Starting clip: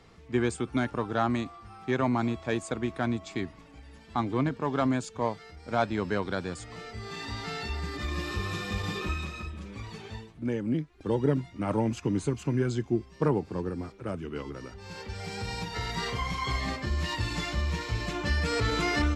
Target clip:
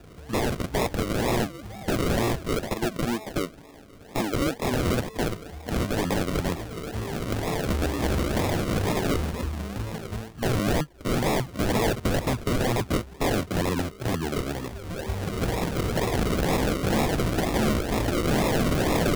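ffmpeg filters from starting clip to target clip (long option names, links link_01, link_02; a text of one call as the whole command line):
ffmpeg -i in.wav -filter_complex "[0:a]asettb=1/sr,asplit=3[link_01][link_02][link_03];[link_01]atrim=end=2.704[link_04];[link_02]atrim=start=2.7:end=4.71,asetpts=PTS-STARTPTS,afade=type=in:duration=0.004:curve=qsin,afade=type=out:start_time=2.006:duration=0.004:curve=qsin,highpass=320[link_05];[link_03]atrim=start=4.706[link_06];[link_04][link_05]acrossfade=duration=0.004:curve1=hsin:curve2=qsin[link_07];[link_07][link_06]acrossfade=duration=0.004:curve1=qsin:curve2=hsin,acrusher=samples=41:mix=1:aa=0.000001:lfo=1:lforange=24.6:lforate=2.1,aeval=exprs='(mod(21.1*val(0)+1,2)-1)/21.1':channel_layout=same,volume=8.5dB" out.wav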